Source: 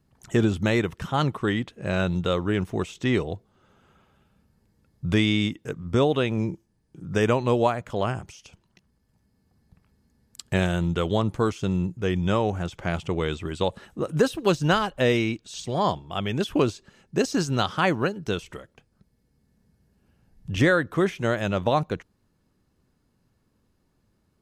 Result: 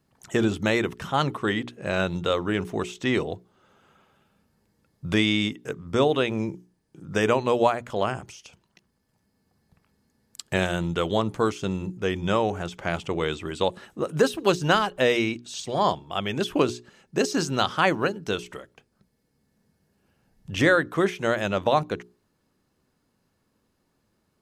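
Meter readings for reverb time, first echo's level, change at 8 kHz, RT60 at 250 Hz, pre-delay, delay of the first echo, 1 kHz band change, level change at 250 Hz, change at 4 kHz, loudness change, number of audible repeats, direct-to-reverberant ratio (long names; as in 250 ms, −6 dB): no reverb audible, no echo audible, +2.0 dB, no reverb audible, no reverb audible, no echo audible, +1.5 dB, −1.5 dB, +2.0 dB, 0.0 dB, no echo audible, no reverb audible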